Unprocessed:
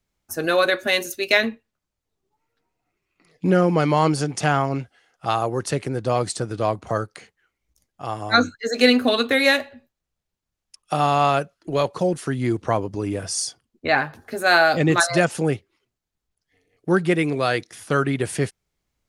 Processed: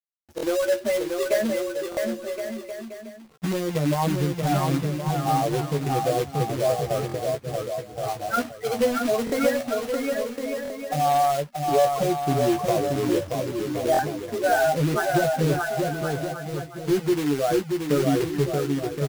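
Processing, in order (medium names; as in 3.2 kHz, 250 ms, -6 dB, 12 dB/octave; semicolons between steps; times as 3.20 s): spectral contrast enhancement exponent 2.7; low-pass 1.1 kHz 12 dB/octave; peaking EQ 110 Hz -6 dB 0.35 oct; compression 5:1, threshold -21 dBFS, peak gain reduction 9 dB; companded quantiser 4-bit; doubling 14 ms -6 dB; bouncing-ball echo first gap 630 ms, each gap 0.7×, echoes 5; buffer glitch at 0.36/1.90/7.07/9.25/10.63/13.92 s, samples 1024, times 2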